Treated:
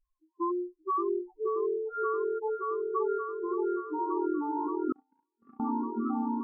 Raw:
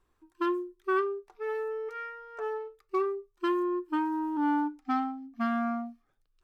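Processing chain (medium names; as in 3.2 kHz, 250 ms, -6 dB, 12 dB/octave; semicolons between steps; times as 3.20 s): in parallel at -5 dB: hysteresis with a dead band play -41.5 dBFS; on the sum: graphic EQ 125/250/1000/2000/4000 Hz -8/+6/+9/+5/-12 dB; compression 6:1, threshold -20 dBFS, peak gain reduction 7 dB; loudest bins only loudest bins 2; on a send: delay with an opening low-pass 576 ms, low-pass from 750 Hz, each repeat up 1 oct, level 0 dB; on the sum: gain riding within 3 dB 0.5 s; 4.92–5.60 s: gate -20 dBFS, range -44 dB; spectral noise reduction 10 dB; trim -4.5 dB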